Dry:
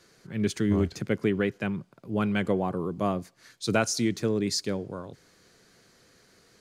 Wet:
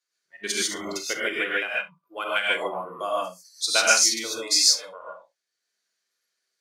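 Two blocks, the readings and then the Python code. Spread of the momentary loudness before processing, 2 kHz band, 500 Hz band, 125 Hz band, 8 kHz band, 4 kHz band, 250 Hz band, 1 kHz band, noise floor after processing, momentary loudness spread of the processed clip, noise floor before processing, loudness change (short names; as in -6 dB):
10 LU, +10.5 dB, -1.5 dB, under -20 dB, +14.0 dB, +13.5 dB, -12.5 dB, +5.5 dB, -82 dBFS, 17 LU, -61 dBFS, +5.5 dB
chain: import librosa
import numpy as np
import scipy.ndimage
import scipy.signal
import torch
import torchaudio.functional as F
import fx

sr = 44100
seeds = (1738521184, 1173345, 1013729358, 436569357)

y = fx.weighting(x, sr, curve='A')
y = fx.noise_reduce_blind(y, sr, reduce_db=27)
y = fx.tilt_eq(y, sr, slope=3.0)
y = fx.transient(y, sr, attack_db=5, sustain_db=-5)
y = fx.echo_multitap(y, sr, ms=(44, 67), db=(-15.0, -20.0))
y = fx.rev_gated(y, sr, seeds[0], gate_ms=170, shape='rising', drr_db=-5.5)
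y = y * 10.0 ** (-3.0 / 20.0)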